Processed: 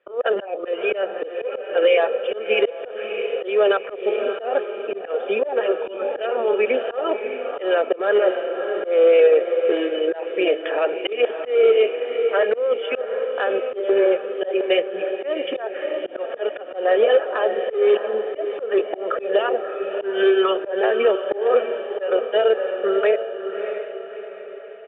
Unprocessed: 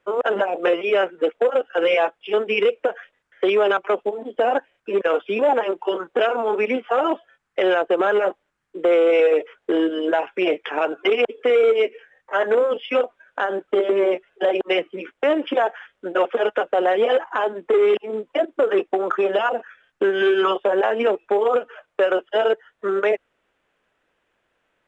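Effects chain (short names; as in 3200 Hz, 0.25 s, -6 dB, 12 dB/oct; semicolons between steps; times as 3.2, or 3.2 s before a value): speaker cabinet 330–3100 Hz, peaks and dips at 380 Hz +4 dB, 700 Hz -4 dB, 1100 Hz -10 dB, 2100 Hz -5 dB; comb 1.7 ms, depth 49%; diffused feedback echo 0.633 s, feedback 46%, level -8 dB; auto swell 0.188 s; gain +1.5 dB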